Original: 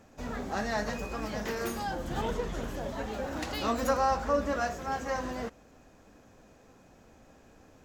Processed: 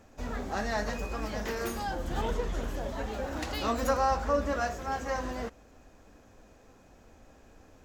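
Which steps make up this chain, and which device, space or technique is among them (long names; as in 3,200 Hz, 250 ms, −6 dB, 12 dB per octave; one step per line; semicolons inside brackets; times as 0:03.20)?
low shelf boost with a cut just above (low-shelf EQ 97 Hz +7 dB; parametric band 150 Hz −5 dB 1.1 octaves)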